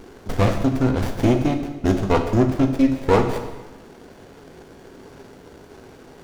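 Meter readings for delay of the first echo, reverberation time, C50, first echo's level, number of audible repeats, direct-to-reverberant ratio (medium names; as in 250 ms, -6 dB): no echo, 1.2 s, 8.0 dB, no echo, no echo, 5.0 dB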